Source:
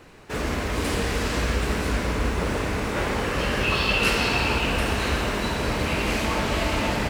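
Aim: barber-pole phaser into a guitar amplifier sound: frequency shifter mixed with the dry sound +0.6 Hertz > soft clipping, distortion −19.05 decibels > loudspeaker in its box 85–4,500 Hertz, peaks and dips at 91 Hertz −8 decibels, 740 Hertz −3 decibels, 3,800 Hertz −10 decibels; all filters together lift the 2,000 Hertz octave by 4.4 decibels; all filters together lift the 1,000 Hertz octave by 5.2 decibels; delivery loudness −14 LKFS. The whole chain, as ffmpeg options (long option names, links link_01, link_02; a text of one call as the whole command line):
ffmpeg -i in.wav -filter_complex "[0:a]equalizer=frequency=1000:width_type=o:gain=6,equalizer=frequency=2000:width_type=o:gain=5,asplit=2[link_01][link_02];[link_02]afreqshift=0.6[link_03];[link_01][link_03]amix=inputs=2:normalize=1,asoftclip=threshold=-17dB,highpass=85,equalizer=frequency=91:width_type=q:width=4:gain=-8,equalizer=frequency=740:width_type=q:width=4:gain=-3,equalizer=frequency=3800:width_type=q:width=4:gain=-10,lowpass=frequency=4500:width=0.5412,lowpass=frequency=4500:width=1.3066,volume=13dB" out.wav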